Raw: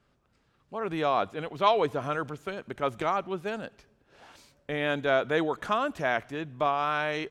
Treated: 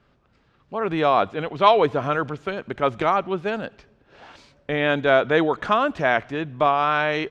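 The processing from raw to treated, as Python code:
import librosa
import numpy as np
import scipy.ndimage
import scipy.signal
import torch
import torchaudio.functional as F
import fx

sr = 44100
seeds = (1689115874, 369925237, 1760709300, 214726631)

y = scipy.signal.sosfilt(scipy.signal.butter(2, 4500.0, 'lowpass', fs=sr, output='sos'), x)
y = F.gain(torch.from_numpy(y), 7.5).numpy()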